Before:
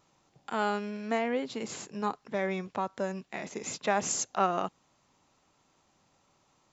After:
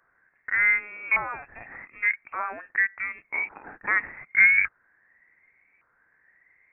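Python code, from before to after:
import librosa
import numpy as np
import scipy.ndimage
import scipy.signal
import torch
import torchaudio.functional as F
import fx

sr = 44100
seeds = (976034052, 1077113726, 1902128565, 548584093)

y = fx.filter_lfo_highpass(x, sr, shape='saw_down', hz=0.86, low_hz=580.0, high_hz=1600.0, q=6.6)
y = fx.freq_invert(y, sr, carrier_hz=2900)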